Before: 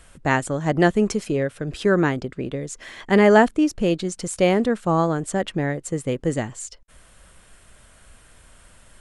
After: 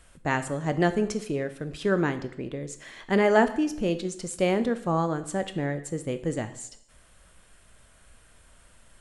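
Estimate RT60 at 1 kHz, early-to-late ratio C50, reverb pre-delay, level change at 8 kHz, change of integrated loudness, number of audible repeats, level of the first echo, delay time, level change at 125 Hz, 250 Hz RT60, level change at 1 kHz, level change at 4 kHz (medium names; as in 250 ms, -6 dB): 0.70 s, 13.5 dB, 6 ms, -5.5 dB, -6.0 dB, no echo, no echo, no echo, -6.0 dB, 0.70 s, -5.5 dB, -5.5 dB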